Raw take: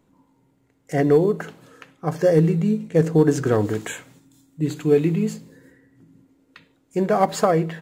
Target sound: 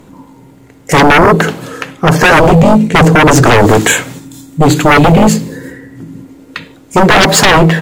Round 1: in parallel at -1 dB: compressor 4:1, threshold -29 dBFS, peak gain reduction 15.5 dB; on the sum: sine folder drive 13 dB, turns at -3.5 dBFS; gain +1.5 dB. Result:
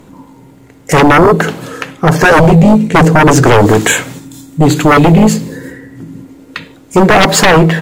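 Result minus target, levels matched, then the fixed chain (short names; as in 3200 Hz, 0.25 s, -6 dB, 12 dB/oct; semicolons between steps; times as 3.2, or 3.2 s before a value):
compressor: peak gain reduction +8.5 dB
in parallel at -1 dB: compressor 4:1, threshold -17.5 dBFS, peak gain reduction 6.5 dB; on the sum: sine folder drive 13 dB, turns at -3.5 dBFS; gain +1.5 dB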